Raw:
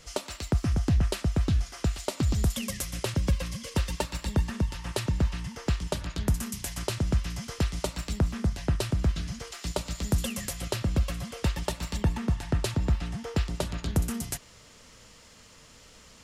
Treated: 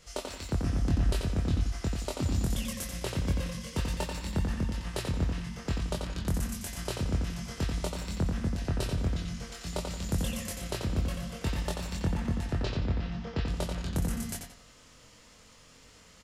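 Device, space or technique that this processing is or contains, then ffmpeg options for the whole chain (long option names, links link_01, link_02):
slapback doubling: -filter_complex "[0:a]asettb=1/sr,asplit=3[link_01][link_02][link_03];[link_01]atrim=end=12.584[link_04];[link_02]atrim=start=12.58:end=13.46,asetpts=PTS-STARTPTS,afade=type=in:duration=0.004:curve=qsin,afade=type=out:start_time=0.876:duration=0.004:curve=qsin,lowpass=frequency=5200:width=0.5412,lowpass=frequency=5200:width=1.3066[link_05];[link_03]atrim=start=13.456[link_06];[link_04][link_05]acrossfade=duration=0.004:curve1=hsin:curve2=qsin[link_07];[link_07][link_06]acrossfade=duration=0.004:curve1=qsin:curve2=hsin,asplit=3[link_08][link_09][link_10];[link_09]adelay=23,volume=-3dB[link_11];[link_10]adelay=91,volume=-9dB[link_12];[link_08][link_11][link_12]amix=inputs=3:normalize=0,asplit=2[link_13][link_14];[link_14]adelay=87,lowpass=frequency=4300:poles=1,volume=-4.5dB,asplit=2[link_15][link_16];[link_16]adelay=87,lowpass=frequency=4300:poles=1,volume=0.34,asplit=2[link_17][link_18];[link_18]adelay=87,lowpass=frequency=4300:poles=1,volume=0.34,asplit=2[link_19][link_20];[link_20]adelay=87,lowpass=frequency=4300:poles=1,volume=0.34[link_21];[link_13][link_15][link_17][link_19][link_21]amix=inputs=5:normalize=0,volume=-6dB"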